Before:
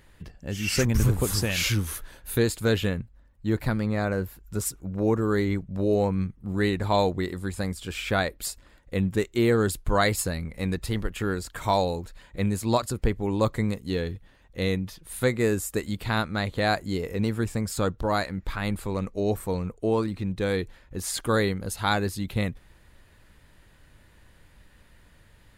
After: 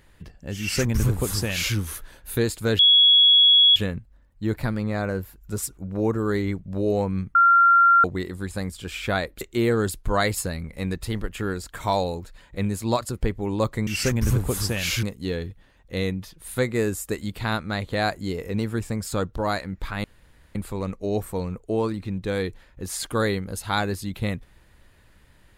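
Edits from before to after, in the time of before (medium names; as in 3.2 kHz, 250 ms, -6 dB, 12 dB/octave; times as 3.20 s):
0.60–1.76 s: copy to 13.68 s
2.79 s: add tone 3.35 kHz -11.5 dBFS 0.97 s
6.38–7.07 s: bleep 1.38 kHz -12 dBFS
8.44–9.22 s: delete
18.69 s: insert room tone 0.51 s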